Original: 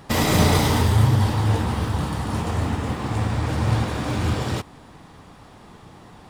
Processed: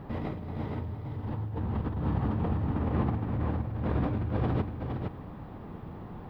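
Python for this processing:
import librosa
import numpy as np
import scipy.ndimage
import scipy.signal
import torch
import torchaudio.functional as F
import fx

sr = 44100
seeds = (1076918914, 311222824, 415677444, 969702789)

y = fx.tilt_shelf(x, sr, db=4.5, hz=840.0)
y = fx.over_compress(y, sr, threshold_db=-25.0, ratio=-1.0)
y = fx.dmg_noise_colour(y, sr, seeds[0], colour='violet', level_db=-45.0)
y = fx.air_absorb(y, sr, metres=430.0)
y = y + 10.0 ** (-5.0 / 20.0) * np.pad(y, (int(464 * sr / 1000.0), 0))[:len(y)]
y = F.gain(torch.from_numpy(y), -7.0).numpy()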